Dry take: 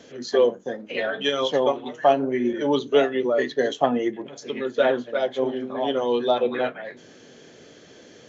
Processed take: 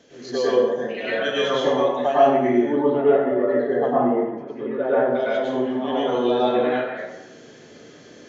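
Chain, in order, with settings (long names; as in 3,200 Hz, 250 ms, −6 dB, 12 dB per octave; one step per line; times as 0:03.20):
0:02.59–0:05.15: low-pass filter 1,200 Hz 12 dB per octave
dense smooth reverb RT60 1 s, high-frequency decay 0.6×, pre-delay 90 ms, DRR −9 dB
level −6.5 dB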